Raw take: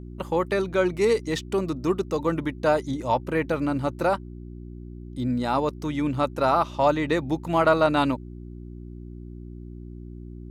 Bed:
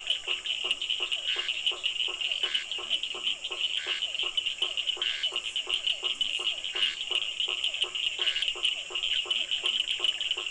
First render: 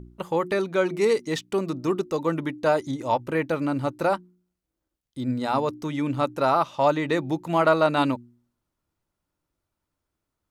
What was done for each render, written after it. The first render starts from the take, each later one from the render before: de-hum 60 Hz, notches 6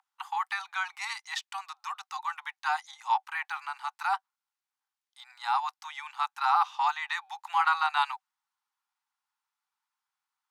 Chebyshev high-pass 760 Hz, order 10; treble shelf 8.4 kHz -8.5 dB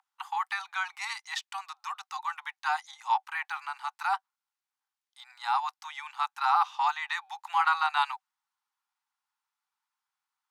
no audible change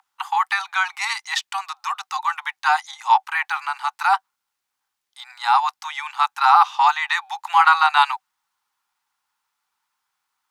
trim +11 dB

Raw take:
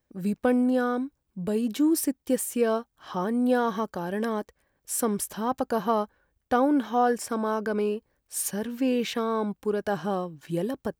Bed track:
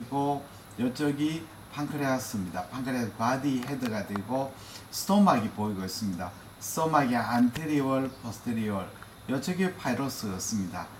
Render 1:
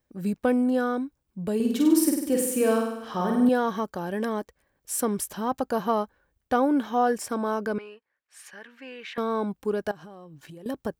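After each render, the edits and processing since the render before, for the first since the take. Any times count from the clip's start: 1.55–3.49 s: flutter echo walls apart 8.4 m, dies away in 0.88 s; 7.78–9.18 s: band-pass filter 1.8 kHz, Q 1.7; 9.91–10.66 s: compression 10:1, threshold -41 dBFS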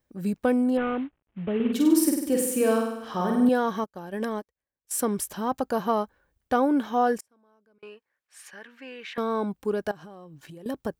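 0.77–1.73 s: CVSD coder 16 kbps; 3.84–4.91 s: upward expansion 2.5:1, over -42 dBFS; 7.20–7.83 s: inverted gate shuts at -30 dBFS, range -36 dB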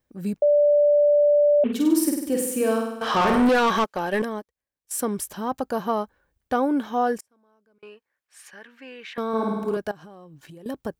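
0.42–1.64 s: bleep 586 Hz -14 dBFS; 3.01–4.22 s: overdrive pedal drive 24 dB, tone 4.9 kHz, clips at -12 dBFS; 9.28–9.77 s: flutter echo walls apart 9.2 m, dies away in 1.3 s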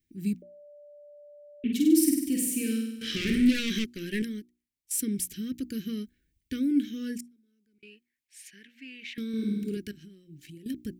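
elliptic band-stop 330–2100 Hz, stop band 80 dB; hum notches 60/120/180/240/300/360 Hz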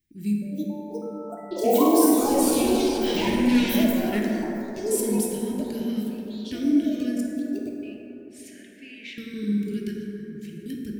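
ever faster or slower copies 416 ms, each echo +7 st, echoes 3; plate-style reverb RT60 3.9 s, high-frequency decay 0.3×, DRR -1.5 dB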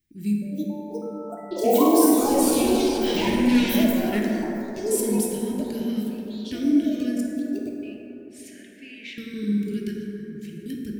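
trim +1 dB

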